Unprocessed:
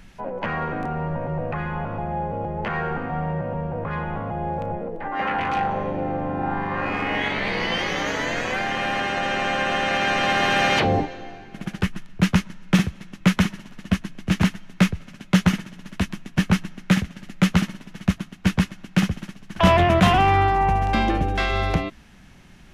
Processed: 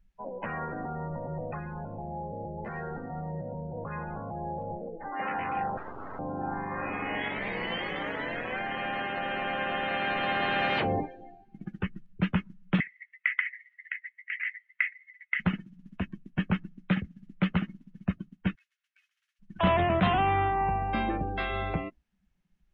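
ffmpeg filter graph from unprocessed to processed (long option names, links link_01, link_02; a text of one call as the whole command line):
ffmpeg -i in.wav -filter_complex "[0:a]asettb=1/sr,asplit=3[link_01][link_02][link_03];[link_01]atrim=end=1.594[link_04];[link_02]atrim=start=1.59:end=3.77,asetpts=PTS-STARTPTS,afade=type=in:duration=0.004:curve=qsin,afade=type=out:start_time=2.176:duration=0.004:curve=qsin,volume=21dB,asoftclip=hard,volume=-21dB,adynamicsmooth=sensitivity=3.5:basefreq=2800,equalizer=frequency=1200:width_type=o:width=1.2:gain=-4[link_05];[link_03]atrim=start=3.766[link_06];[link_04][link_05]acrossfade=duration=0.004:curve1=hsin:curve2=qsin[link_07];[link_07][link_06]acrossfade=duration=0.004:curve1=qsin:curve2=hsin,asettb=1/sr,asplit=3[link_08][link_09][link_10];[link_08]atrim=end=5.774[link_11];[link_09]atrim=start=5.77:end=6.19,asetpts=PTS-STARTPTS,afade=type=in:duration=0.004:curve=qsin,afade=type=out:start_time=0.416:duration=0.004:curve=qsin,aeval=exprs='abs(val(0))':channel_layout=same,tiltshelf=frequency=1200:gain=-4[link_12];[link_10]atrim=start=6.186[link_13];[link_11][link_12]acrossfade=duration=0.004:curve1=hsin:curve2=qsin[link_14];[link_14][link_13]acrossfade=duration=0.004:curve1=qsin:curve2=hsin,asettb=1/sr,asplit=3[link_15][link_16][link_17];[link_15]atrim=end=12.804[link_18];[link_16]atrim=start=12.8:end=15.4,asetpts=PTS-STARTPTS,afade=type=in:duration=0.004:curve=qsin,afade=type=out:start_time=2.596:duration=0.004:curve=qsin,aemphasis=mode=reproduction:type=riaa,acompressor=threshold=-9dB:ratio=4:attack=3.2:release=140:knee=1:detection=peak,highpass=frequency=2000:width_type=q:width=13[link_19];[link_17]atrim=start=15.396[link_20];[link_18][link_19]acrossfade=duration=0.004:curve1=hsin:curve2=qsin[link_21];[link_21][link_20]acrossfade=duration=0.004:curve1=qsin:curve2=hsin,asettb=1/sr,asplit=3[link_22][link_23][link_24];[link_22]atrim=end=18.554[link_25];[link_23]atrim=start=18.55:end=19.4,asetpts=PTS-STARTPTS,afade=type=in:duration=0.004:curve=qsin,afade=type=out:start_time=0.846:duration=0.004:curve=qsin,highpass=frequency=1500:width=0.5412,highpass=frequency=1500:width=1.3066,acompressor=threshold=-44dB:ratio=2.5:attack=3.2:release=140:knee=1:detection=peak[link_26];[link_24]atrim=start=19.396[link_27];[link_25][link_26]acrossfade=duration=0.004:curve1=hsin:curve2=qsin[link_28];[link_28][link_27]acrossfade=duration=0.004:curve1=qsin:curve2=hsin,acrossover=split=4400[link_29][link_30];[link_30]acompressor=threshold=-50dB:ratio=4:attack=1:release=60[link_31];[link_29][link_31]amix=inputs=2:normalize=0,afftdn=noise_reduction=25:noise_floor=-31,lowshelf=frequency=87:gain=-6,volume=-7.5dB" out.wav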